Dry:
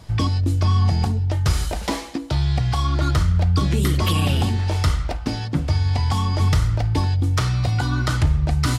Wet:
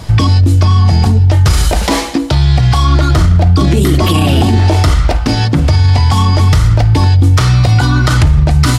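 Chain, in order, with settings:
0:03.14–0:04.94: hollow resonant body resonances 320/670 Hz, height 8 dB, ringing for 20 ms
boost into a limiter +17 dB
level −1 dB

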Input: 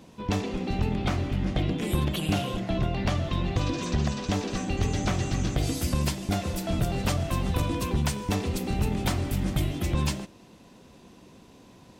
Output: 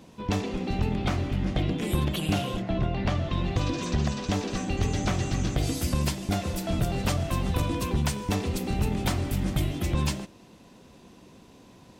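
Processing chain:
0:02.61–0:03.36: high-shelf EQ 4,400 Hz → 8,800 Hz −12 dB

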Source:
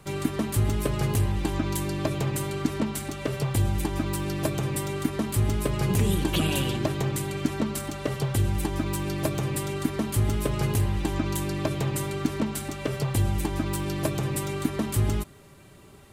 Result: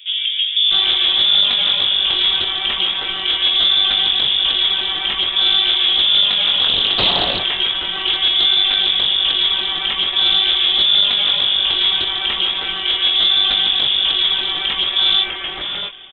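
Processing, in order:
double-tracking delay 22 ms −5 dB
sine wavefolder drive 9 dB, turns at −9.5 dBFS
voice inversion scrambler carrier 3,500 Hz
multiband delay without the direct sound highs, lows 650 ms, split 2,600 Hz
highs frequency-modulated by the lows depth 0.37 ms

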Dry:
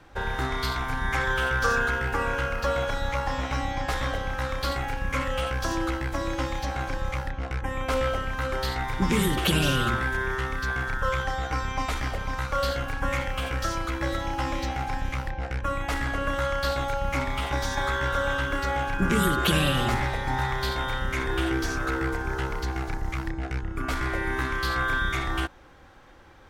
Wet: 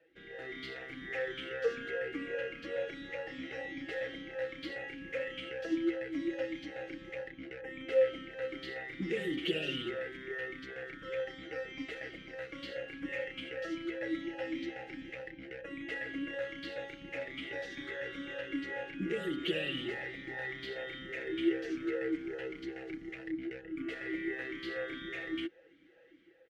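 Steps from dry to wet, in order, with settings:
comb filter 6.1 ms, depth 55%
automatic gain control gain up to 6 dB
formant filter swept between two vowels e-i 2.5 Hz
level −4.5 dB

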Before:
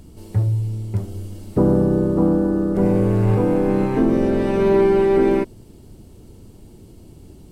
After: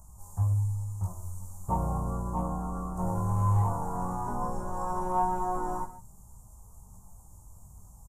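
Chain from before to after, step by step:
drawn EQ curve 100 Hz 0 dB, 180 Hz −5 dB, 350 Hz −23 dB, 1,100 Hz +13 dB, 2,400 Hz −28 dB, 4,400 Hz −22 dB, 7,000 Hz +9 dB
speed change −7%
multi-tap delay 47/118/143 ms −11.5/−18.5/−19 dB
in parallel at −10.5 dB: hard clipping −14.5 dBFS, distortion −20 dB
on the sum: multi-voice chorus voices 6, 0.3 Hz, delay 19 ms, depth 3.3 ms
level −7 dB

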